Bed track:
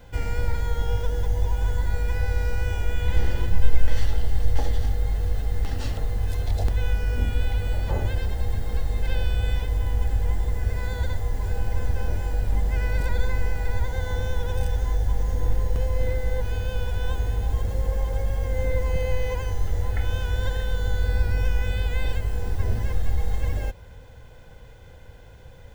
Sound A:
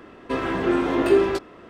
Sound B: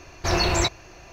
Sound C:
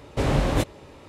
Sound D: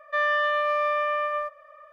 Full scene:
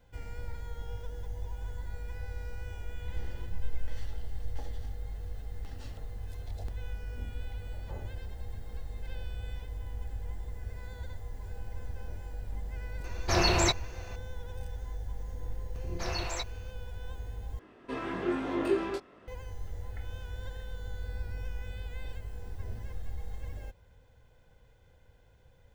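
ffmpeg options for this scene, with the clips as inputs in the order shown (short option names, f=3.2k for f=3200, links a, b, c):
-filter_complex "[2:a]asplit=2[a][b];[0:a]volume=-15dB[c];[b]acrossover=split=400[d][e];[e]adelay=160[f];[d][f]amix=inputs=2:normalize=0[g];[1:a]flanger=delay=18.5:depth=5.7:speed=1.2[h];[c]asplit=2[i][j];[i]atrim=end=17.594[k];[h]atrim=end=1.69,asetpts=PTS-STARTPTS,volume=-7.5dB[l];[j]atrim=start=19.276[m];[a]atrim=end=1.12,asetpts=PTS-STARTPTS,volume=-3.5dB,afade=t=in:d=0.004:c=hsin,afade=t=out:st=1.116:d=0.004:c=hsin,adelay=13040[n];[g]atrim=end=1.12,asetpts=PTS-STARTPTS,volume=-13dB,afade=t=in:d=0.004:c=hsin,afade=t=out:st=1.116:d=0.004:c=hsin,adelay=15590[o];[k][l]acrossfade=d=0.004:c1=hsin:c2=hsin[p];[p][m]acrossfade=d=0.004:c1=hsin:c2=hsin[q];[q][n][o]amix=inputs=3:normalize=0"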